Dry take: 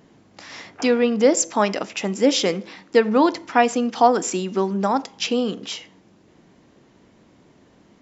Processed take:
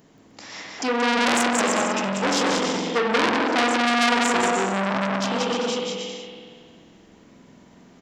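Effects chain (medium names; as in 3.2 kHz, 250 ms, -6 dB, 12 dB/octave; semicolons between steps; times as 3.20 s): treble shelf 6.9 kHz +11.5 dB; on a send: bouncing-ball echo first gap 180 ms, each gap 0.7×, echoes 5; on the sum: spring tank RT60 1.9 s, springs 46 ms, chirp 65 ms, DRR 0 dB; transformer saturation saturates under 3.8 kHz; trim -2.5 dB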